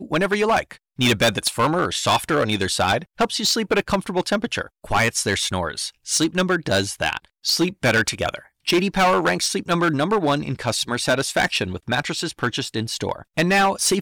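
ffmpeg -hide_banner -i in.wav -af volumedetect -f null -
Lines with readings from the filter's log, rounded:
mean_volume: -21.6 dB
max_volume: -13.3 dB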